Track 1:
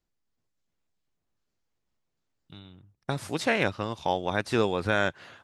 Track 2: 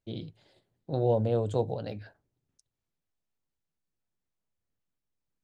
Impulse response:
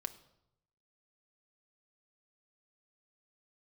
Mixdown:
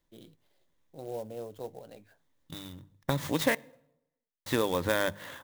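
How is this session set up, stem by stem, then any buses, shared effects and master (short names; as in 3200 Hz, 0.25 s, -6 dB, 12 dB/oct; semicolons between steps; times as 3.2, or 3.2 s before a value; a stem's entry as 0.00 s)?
+2.0 dB, 0.00 s, muted 3.55–4.46, send -6 dB, notches 50/100/150/200 Hz; compressor 2:1, threshold -34 dBFS, peak gain reduction 8.5 dB; ripple EQ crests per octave 1.1, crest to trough 8 dB
-10.5 dB, 0.05 s, no send, bell 87 Hz -13.5 dB 1.7 oct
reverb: on, RT60 0.80 s, pre-delay 5 ms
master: clock jitter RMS 0.029 ms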